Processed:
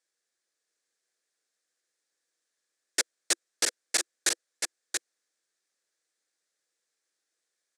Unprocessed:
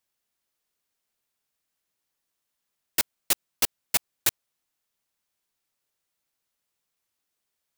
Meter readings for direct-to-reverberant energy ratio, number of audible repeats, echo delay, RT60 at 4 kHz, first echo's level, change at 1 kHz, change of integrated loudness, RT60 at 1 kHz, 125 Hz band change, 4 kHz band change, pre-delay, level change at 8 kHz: none, 1, 0.68 s, none, -5.0 dB, -3.5 dB, -3.5 dB, none, under -15 dB, +1.0 dB, none, +1.5 dB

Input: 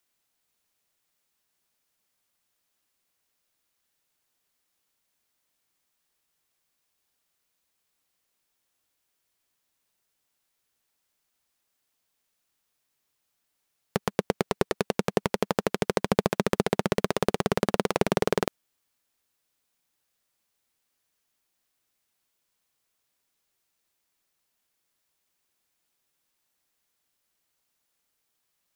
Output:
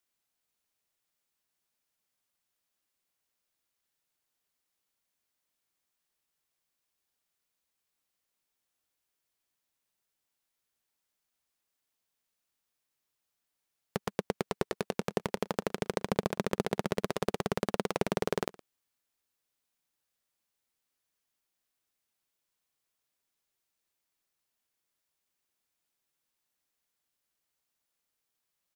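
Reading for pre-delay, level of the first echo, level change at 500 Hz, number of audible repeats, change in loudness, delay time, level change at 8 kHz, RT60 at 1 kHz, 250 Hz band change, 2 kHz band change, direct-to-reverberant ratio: none, -22.5 dB, -6.5 dB, 1, -6.5 dB, 0.115 s, -6.5 dB, none, -6.5 dB, -6.5 dB, none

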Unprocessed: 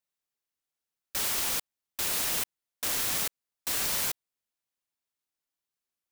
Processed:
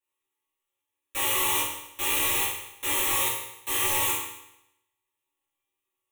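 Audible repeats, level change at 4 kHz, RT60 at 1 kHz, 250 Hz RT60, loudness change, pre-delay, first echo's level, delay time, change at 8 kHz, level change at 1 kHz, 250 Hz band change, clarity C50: none, +3.5 dB, 0.85 s, 0.85 s, +4.0 dB, 3 ms, none, none, +3.0 dB, +10.0 dB, +6.0 dB, 2.0 dB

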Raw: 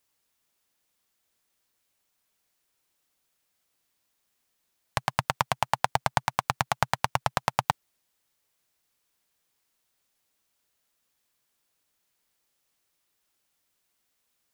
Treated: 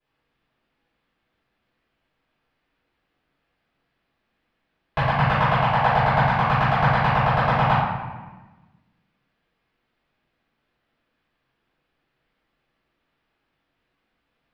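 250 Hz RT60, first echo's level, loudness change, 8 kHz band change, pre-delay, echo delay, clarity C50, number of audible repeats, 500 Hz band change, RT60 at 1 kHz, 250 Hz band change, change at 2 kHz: 1.8 s, none, +9.0 dB, under -15 dB, 3 ms, none, -1.5 dB, none, +10.0 dB, 1.2 s, +14.5 dB, +9.0 dB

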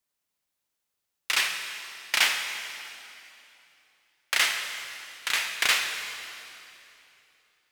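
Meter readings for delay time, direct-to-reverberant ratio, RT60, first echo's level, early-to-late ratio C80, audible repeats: none, 5.0 dB, 3.0 s, none, 6.5 dB, none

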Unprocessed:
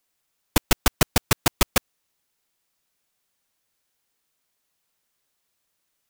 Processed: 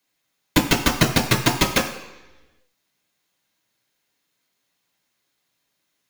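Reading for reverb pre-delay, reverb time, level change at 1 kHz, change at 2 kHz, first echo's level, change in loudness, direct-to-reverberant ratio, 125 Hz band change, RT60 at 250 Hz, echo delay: 3 ms, 1.1 s, +3.5 dB, +5.0 dB, none, +3.0 dB, -0.5 dB, +4.5 dB, 1.0 s, none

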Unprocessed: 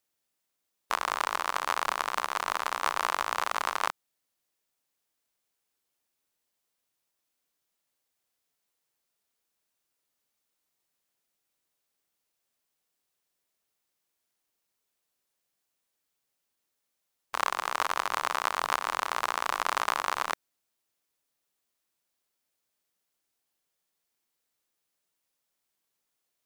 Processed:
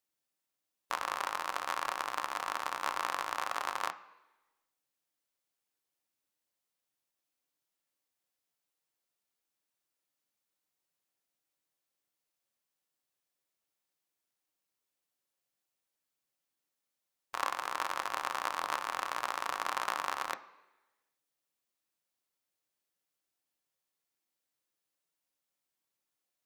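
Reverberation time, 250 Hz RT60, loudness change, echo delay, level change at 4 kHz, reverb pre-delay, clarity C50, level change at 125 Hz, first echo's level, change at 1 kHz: 1.1 s, 1.0 s, -5.5 dB, none, -6.0 dB, 3 ms, 16.0 dB, n/a, none, -5.5 dB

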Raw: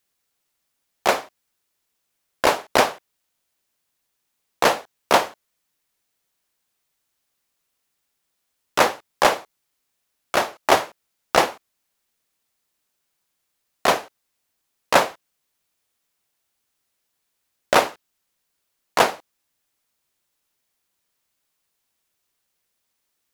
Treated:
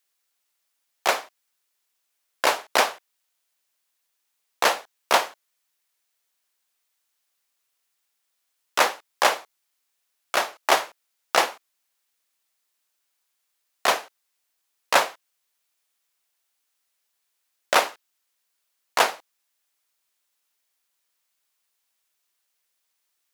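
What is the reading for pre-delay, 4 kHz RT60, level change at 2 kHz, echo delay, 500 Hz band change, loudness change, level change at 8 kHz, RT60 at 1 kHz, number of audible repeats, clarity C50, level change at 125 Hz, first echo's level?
none, none, -1.0 dB, none, -5.5 dB, -2.5 dB, 0.0 dB, none, none, none, under -15 dB, none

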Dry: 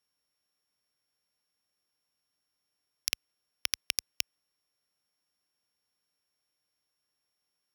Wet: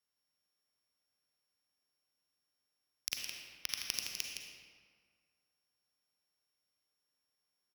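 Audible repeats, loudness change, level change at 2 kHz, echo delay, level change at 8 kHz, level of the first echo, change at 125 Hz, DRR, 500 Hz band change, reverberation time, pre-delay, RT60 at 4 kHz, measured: 1, -5.0 dB, -4.0 dB, 0.164 s, -4.5 dB, -7.5 dB, -4.0 dB, -0.5 dB, -3.0 dB, 1.8 s, 37 ms, 1.1 s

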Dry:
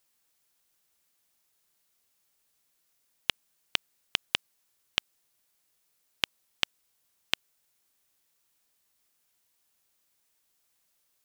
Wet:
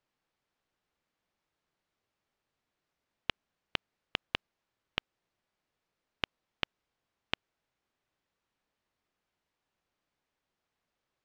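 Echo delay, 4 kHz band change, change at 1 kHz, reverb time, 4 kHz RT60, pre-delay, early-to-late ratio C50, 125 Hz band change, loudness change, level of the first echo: none, -7.5 dB, -1.0 dB, none, none, none, none, +1.5 dB, -6.5 dB, none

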